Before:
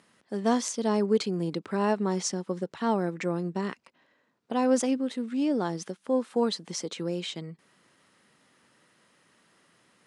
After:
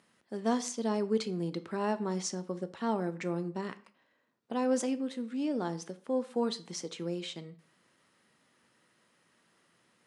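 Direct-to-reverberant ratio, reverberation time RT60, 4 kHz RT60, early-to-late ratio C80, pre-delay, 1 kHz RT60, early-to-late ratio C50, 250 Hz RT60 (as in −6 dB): 11.5 dB, 0.50 s, 0.35 s, 21.0 dB, 6 ms, 0.50 s, 17.5 dB, 0.50 s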